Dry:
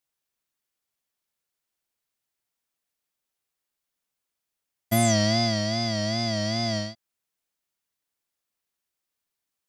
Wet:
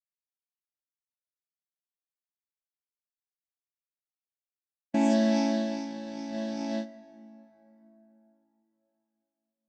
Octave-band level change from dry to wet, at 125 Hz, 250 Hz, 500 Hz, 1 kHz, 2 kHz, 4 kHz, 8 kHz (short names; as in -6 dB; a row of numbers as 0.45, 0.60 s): under -15 dB, +0.5 dB, -4.0 dB, -5.5 dB, -10.0 dB, -15.5 dB, -15.5 dB